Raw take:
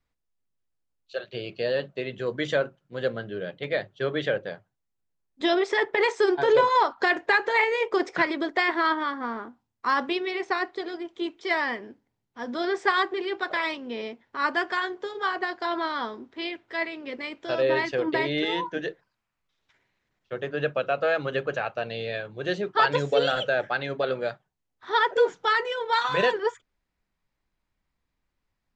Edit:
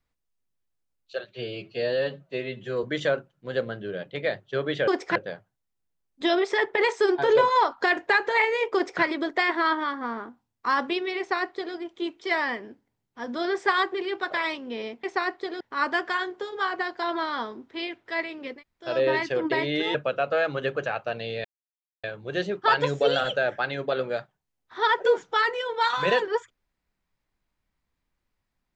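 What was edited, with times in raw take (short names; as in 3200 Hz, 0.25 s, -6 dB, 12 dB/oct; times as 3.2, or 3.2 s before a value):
1.26–2.31 stretch 1.5×
7.94–8.22 copy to 4.35
10.38–10.95 copy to 14.23
17.18–17.48 room tone, crossfade 0.16 s
18.57–20.65 cut
22.15 insert silence 0.59 s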